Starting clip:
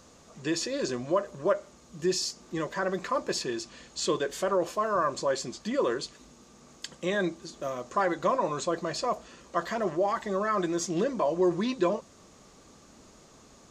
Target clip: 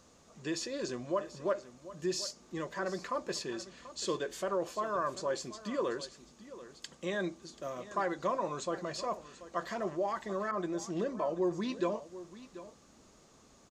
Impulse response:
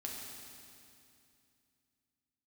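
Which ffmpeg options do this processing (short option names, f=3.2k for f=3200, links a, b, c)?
-filter_complex "[0:a]aecho=1:1:736:0.168,asettb=1/sr,asplit=3[a][b][c];[a]atrim=end=10.514[d];[b]atrim=start=10.51:end=11.62,asetpts=PTS-STARTPTS,afade=t=in:d=0.004:c=qsin,afade=t=out:st=1.106:d=0.004:c=qsin,adynamicequalizer=threshold=0.01:dfrequency=1600:dqfactor=0.7:tfrequency=1600:tqfactor=0.7:attack=5:release=100:ratio=0.375:range=2.5:mode=cutabove:tftype=highshelf[e];[c]atrim=start=11.616[f];[d][e]acrossfade=d=0.004:c1=hsin:c2=qsin[g];[g][f]acrossfade=d=0.004:c1=qsin:c2=hsin,volume=-6.5dB"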